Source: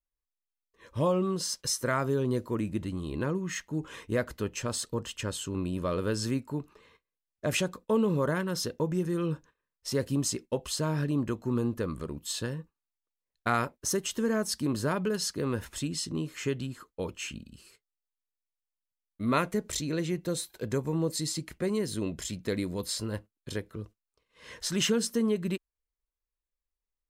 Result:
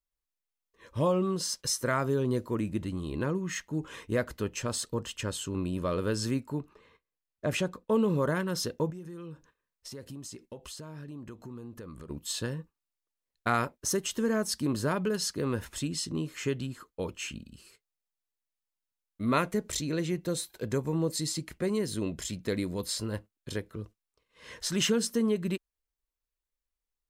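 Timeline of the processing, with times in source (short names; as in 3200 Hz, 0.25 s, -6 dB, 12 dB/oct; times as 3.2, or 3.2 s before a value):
6.6–7.92 high shelf 3400 Hz -7 dB
8.9–12.1 compressor 4:1, threshold -42 dBFS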